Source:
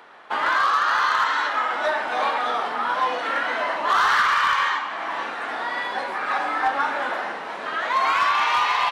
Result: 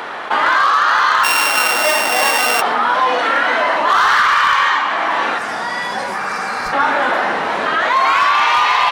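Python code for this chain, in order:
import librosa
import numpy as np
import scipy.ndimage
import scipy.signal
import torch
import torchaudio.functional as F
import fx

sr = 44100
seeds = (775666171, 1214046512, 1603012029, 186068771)

y = fx.sample_sort(x, sr, block=16, at=(1.23, 2.6), fade=0.02)
y = fx.spec_box(y, sr, start_s=5.38, length_s=1.09, low_hz=220.0, high_hz=4600.0, gain_db=-10)
y = fx.low_shelf(y, sr, hz=120.0, db=12.0, at=(6.67, 7.9))
y = fx.spec_repair(y, sr, seeds[0], start_s=6.25, length_s=0.45, low_hz=250.0, high_hz=4000.0, source='before')
y = fx.env_flatten(y, sr, amount_pct=50)
y = y * librosa.db_to_amplitude(5.5)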